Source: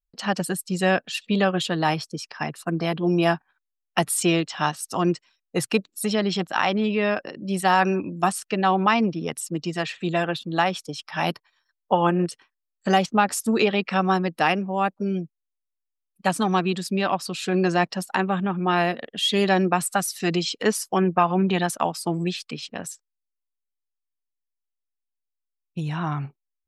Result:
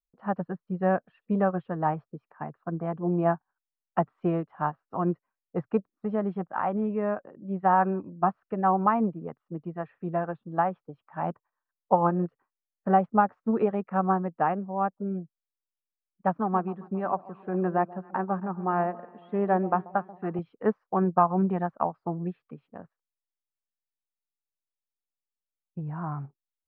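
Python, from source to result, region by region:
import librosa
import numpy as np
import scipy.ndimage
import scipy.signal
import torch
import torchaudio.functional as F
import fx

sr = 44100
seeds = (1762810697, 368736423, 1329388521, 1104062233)

y = fx.chain(x, sr, fx.bandpass_edges(low_hz=160.0, high_hz=3700.0),
    fx.echo_alternate(ms=135, hz=930.0, feedback_pct=64, wet_db=-13.0), at=(16.39, 20.39))
y = scipy.signal.sosfilt(scipy.signal.butter(4, 1300.0, 'lowpass', fs=sr, output='sos'), y)
y = fx.dynamic_eq(y, sr, hz=320.0, q=2.0, threshold_db=-37.0, ratio=4.0, max_db=-4)
y = fx.upward_expand(y, sr, threshold_db=-36.0, expansion=1.5)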